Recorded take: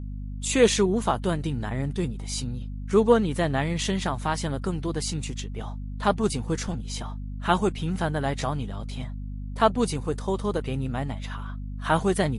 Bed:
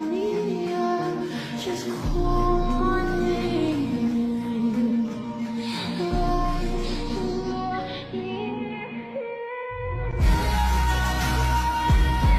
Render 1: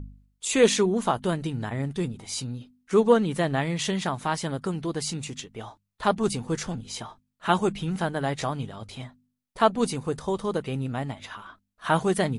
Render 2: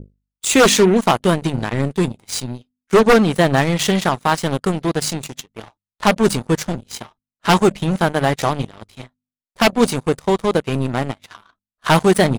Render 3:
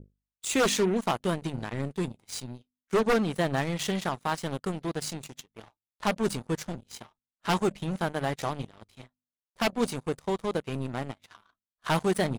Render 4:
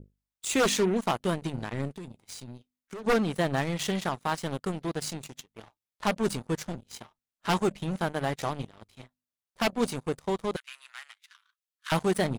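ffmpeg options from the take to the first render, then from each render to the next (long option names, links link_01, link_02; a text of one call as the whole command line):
ffmpeg -i in.wav -af "bandreject=frequency=50:width_type=h:width=4,bandreject=frequency=100:width_type=h:width=4,bandreject=frequency=150:width_type=h:width=4,bandreject=frequency=200:width_type=h:width=4,bandreject=frequency=250:width_type=h:width=4" out.wav
ffmpeg -i in.wav -af "aeval=exprs='0.473*sin(PI/2*2.82*val(0)/0.473)':channel_layout=same,aeval=exprs='0.473*(cos(1*acos(clip(val(0)/0.473,-1,1)))-cos(1*PI/2))+0.075*(cos(3*acos(clip(val(0)/0.473,-1,1)))-cos(3*PI/2))+0.0335*(cos(7*acos(clip(val(0)/0.473,-1,1)))-cos(7*PI/2))':channel_layout=same" out.wav
ffmpeg -i in.wav -af "volume=-12.5dB" out.wav
ffmpeg -i in.wav -filter_complex "[0:a]asplit=3[link_01][link_02][link_03];[link_01]afade=type=out:start_time=1.93:duration=0.02[link_04];[link_02]acompressor=threshold=-36dB:ratio=16:attack=3.2:release=140:knee=1:detection=peak,afade=type=in:start_time=1.93:duration=0.02,afade=type=out:start_time=3.03:duration=0.02[link_05];[link_03]afade=type=in:start_time=3.03:duration=0.02[link_06];[link_04][link_05][link_06]amix=inputs=3:normalize=0,asettb=1/sr,asplit=3[link_07][link_08][link_09];[link_07]atrim=end=10.564[link_10];[link_08]atrim=start=10.56:end=11.92,asetpts=PTS-STARTPTS,afade=type=in:duration=0.004:curve=qsin,afade=type=out:start_time=1.356:duration=0.004:curve=qsin,highpass=frequency=1500:width=0.5412,highpass=frequency=1500:width=1.3066[link_11];[link_09]atrim=start=11.916[link_12];[link_10][link_11]acrossfade=duration=0.004:curve1=hsin:curve2=qsin[link_13];[link_13][link_12]acrossfade=duration=0.004:curve1=qsin:curve2=hsin" out.wav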